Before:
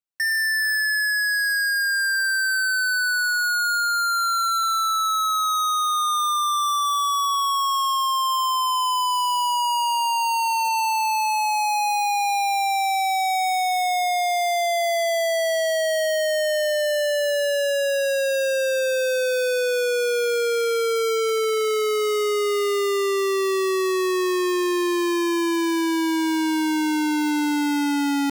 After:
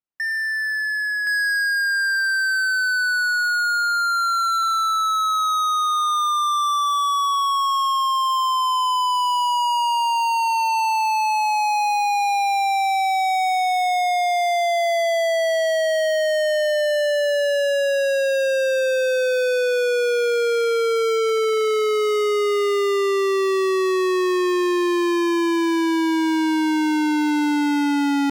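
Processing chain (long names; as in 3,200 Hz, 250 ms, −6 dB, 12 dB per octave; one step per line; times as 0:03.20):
low-pass filter 1,500 Hz 6 dB per octave, from 0:01.27 3,700 Hz
level +2.5 dB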